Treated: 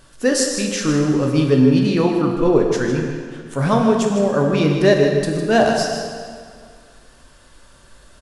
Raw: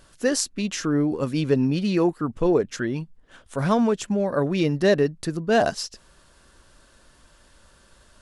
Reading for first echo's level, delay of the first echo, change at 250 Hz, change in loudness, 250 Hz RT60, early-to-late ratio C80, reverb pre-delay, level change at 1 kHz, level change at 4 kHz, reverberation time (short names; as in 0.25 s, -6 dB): -9.5 dB, 0.155 s, +6.0 dB, +6.0 dB, 2.0 s, 3.5 dB, 6 ms, +6.0 dB, +6.0 dB, 2.0 s